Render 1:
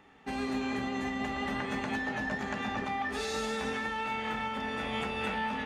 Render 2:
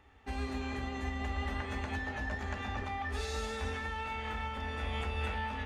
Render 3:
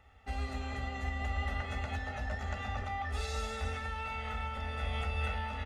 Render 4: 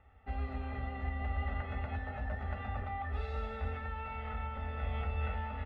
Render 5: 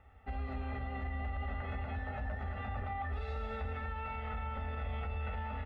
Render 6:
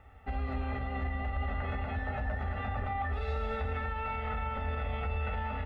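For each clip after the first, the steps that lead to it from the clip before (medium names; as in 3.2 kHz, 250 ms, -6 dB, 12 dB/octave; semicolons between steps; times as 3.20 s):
resonant low shelf 110 Hz +11.5 dB, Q 3; trim -4.5 dB
comb 1.5 ms, depth 65%; trim -2 dB
distance through air 490 m
peak limiter -32.5 dBFS, peak gain reduction 8.5 dB; trim +2 dB
reverberation RT60 0.55 s, pre-delay 7 ms, DRR 15.5 dB; trim +5 dB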